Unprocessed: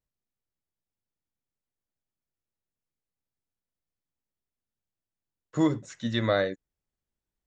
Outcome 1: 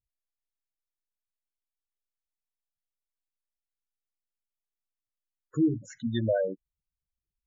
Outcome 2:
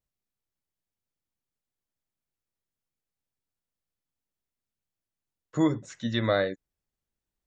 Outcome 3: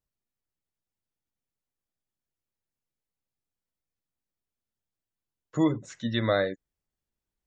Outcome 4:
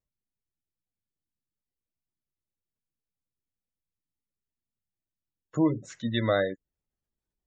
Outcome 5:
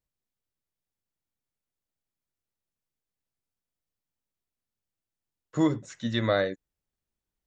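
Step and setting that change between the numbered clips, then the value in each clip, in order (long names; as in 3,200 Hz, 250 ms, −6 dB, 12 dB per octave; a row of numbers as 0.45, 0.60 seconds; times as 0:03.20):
gate on every frequency bin, under each frame's peak: −10, −45, −35, −25, −60 decibels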